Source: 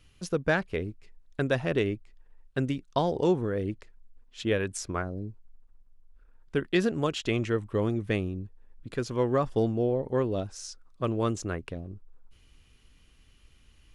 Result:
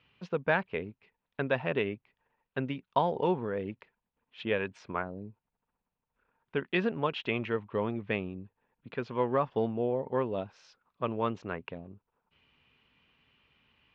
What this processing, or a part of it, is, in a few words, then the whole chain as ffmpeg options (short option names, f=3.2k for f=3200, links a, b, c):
kitchen radio: -af "highpass=160,equalizer=f=320:t=q:w=4:g=-7,equalizer=f=930:t=q:w=4:g=7,equalizer=f=2.5k:t=q:w=4:g=4,lowpass=f=3.4k:w=0.5412,lowpass=f=3.4k:w=1.3066,volume=-2dB"